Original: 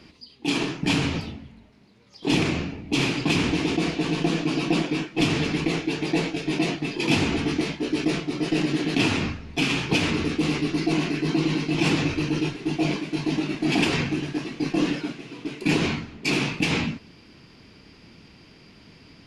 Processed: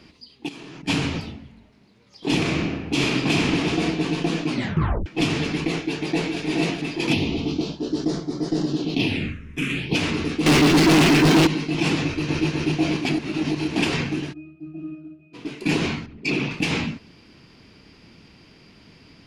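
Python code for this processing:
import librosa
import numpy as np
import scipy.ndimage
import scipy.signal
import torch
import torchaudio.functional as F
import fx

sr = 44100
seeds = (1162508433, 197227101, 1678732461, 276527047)

y = fx.level_steps(x, sr, step_db=20, at=(0.47, 0.87), fade=0.02)
y = fx.reverb_throw(y, sr, start_s=2.39, length_s=1.42, rt60_s=1.3, drr_db=1.0)
y = fx.echo_throw(y, sr, start_s=5.78, length_s=0.61, ms=420, feedback_pct=50, wet_db=-4.0)
y = fx.phaser_stages(y, sr, stages=4, low_hz=750.0, high_hz=2600.0, hz=fx.line((7.12, 0.14), (9.94, 0.74)), feedback_pct=15, at=(7.12, 9.94), fade=0.02)
y = fx.leveller(y, sr, passes=5, at=(10.46, 11.47))
y = fx.echo_throw(y, sr, start_s=12.03, length_s=0.43, ms=250, feedback_pct=70, wet_db=-0.5)
y = fx.octave_resonator(y, sr, note='D#', decay_s=0.41, at=(14.32, 15.33), fade=0.02)
y = fx.envelope_sharpen(y, sr, power=1.5, at=(16.06, 16.51))
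y = fx.edit(y, sr, fx.tape_stop(start_s=4.5, length_s=0.56),
    fx.reverse_span(start_s=13.05, length_s=0.71), tone=tone)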